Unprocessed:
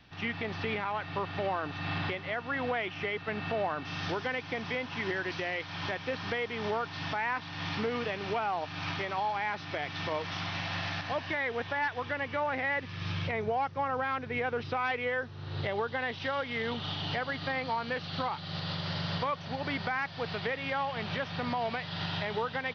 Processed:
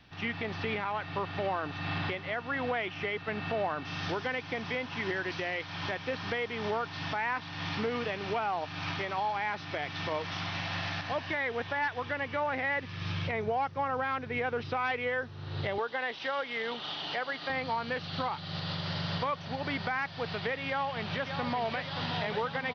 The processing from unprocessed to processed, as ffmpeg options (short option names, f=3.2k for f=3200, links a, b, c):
-filter_complex "[0:a]asettb=1/sr,asplit=3[a][b][c];[a]atrim=end=15.784[d];[b]atrim=start=15.78:end=17.5,asetpts=PTS-STARTPTS,afade=t=in:d=0.004:c=qsin,afade=t=out:st=1.716:d=0.004:c=qsin,highpass=330[e];[c]atrim=start=17.496[f];[d][e]acrossfade=d=0.004:c1=hsin:c2=qsin[g];[g][f]acrossfade=d=0.004:c1=qsin:c2=hsin,asplit=2[h][i];[i]afade=t=in:st=20.68:d=0.01,afade=t=out:st=21.84:d=0.01,aecho=0:1:580|1160|1740|2320|2900|3480|4060|4640:0.398107|0.238864|0.143319|0.0859911|0.0515947|0.0309568|0.0185741|0.0111445[j];[h][j]amix=inputs=2:normalize=0"